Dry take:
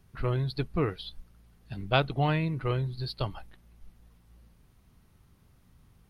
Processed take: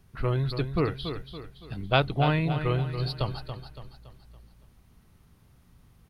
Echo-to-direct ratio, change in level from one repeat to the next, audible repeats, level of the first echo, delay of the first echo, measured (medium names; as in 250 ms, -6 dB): -8.0 dB, -7.5 dB, 4, -9.0 dB, 282 ms